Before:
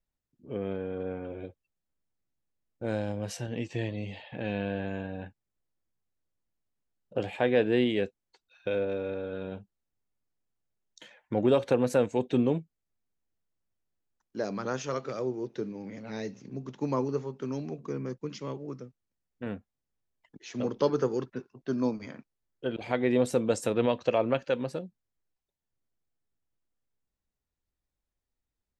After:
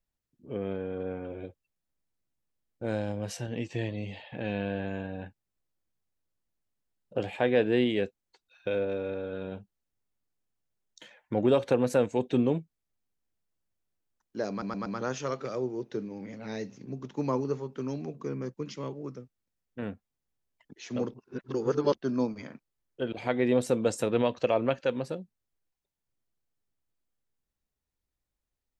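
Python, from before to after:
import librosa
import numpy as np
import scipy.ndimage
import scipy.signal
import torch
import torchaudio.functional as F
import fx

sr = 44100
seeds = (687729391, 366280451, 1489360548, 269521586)

y = fx.edit(x, sr, fx.stutter(start_s=14.5, slice_s=0.12, count=4),
    fx.reverse_span(start_s=20.78, length_s=0.82), tone=tone)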